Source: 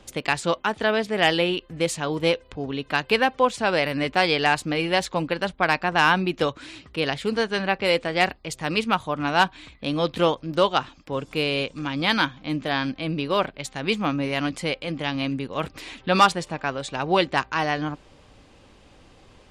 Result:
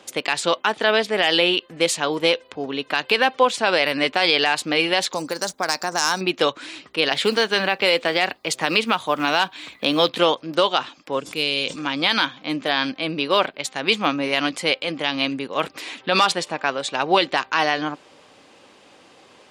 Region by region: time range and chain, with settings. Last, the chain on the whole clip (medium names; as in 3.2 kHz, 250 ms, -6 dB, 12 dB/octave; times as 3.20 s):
5.13–6.21 s: median filter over 3 samples + resonant high shelf 4.3 kHz +14 dB, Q 3 + compression 2:1, threshold -27 dBFS
7.11–10.09 s: companded quantiser 8-bit + three bands compressed up and down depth 70%
11.20–11.76 s: peaking EQ 930 Hz -10.5 dB 2.9 oct + decay stretcher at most 30 dB/s
whole clip: Bessel high-pass 350 Hz, order 2; dynamic bell 3.6 kHz, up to +5 dB, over -37 dBFS, Q 1.3; loudness maximiser +9.5 dB; trim -4 dB